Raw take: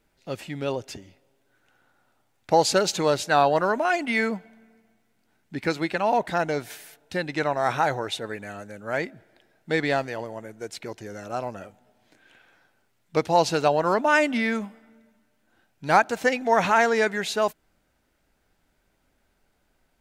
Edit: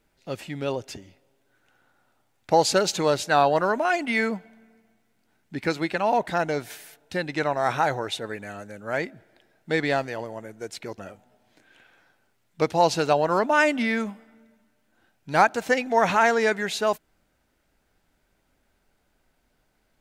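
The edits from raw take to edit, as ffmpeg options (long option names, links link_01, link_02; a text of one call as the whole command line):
ffmpeg -i in.wav -filter_complex "[0:a]asplit=2[link_01][link_02];[link_01]atrim=end=10.982[link_03];[link_02]atrim=start=11.528[link_04];[link_03][link_04]acrossfade=duration=0.004:curve1=hsin:curve2=hsin" out.wav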